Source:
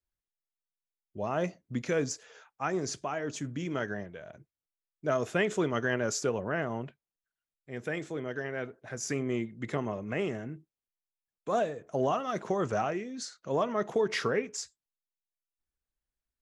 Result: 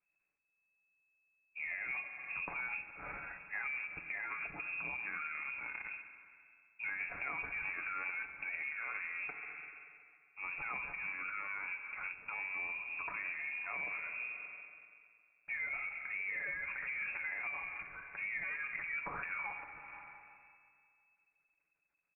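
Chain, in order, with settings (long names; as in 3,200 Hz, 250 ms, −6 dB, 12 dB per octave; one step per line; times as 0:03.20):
dynamic equaliser 200 Hz, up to −7 dB, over −46 dBFS, Q 0.94
transient designer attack −6 dB, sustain +11 dB
comb filter 5.5 ms, depth 58%
wrong playback speed 45 rpm record played at 33 rpm
noise that follows the level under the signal 16 dB
convolution reverb RT60 2.1 s, pre-delay 44 ms, DRR 10.5 dB
downward compressor 6 to 1, threshold −41 dBFS, peak gain reduction 16.5 dB
voice inversion scrambler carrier 2,600 Hz
every ending faded ahead of time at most 230 dB per second
level +2.5 dB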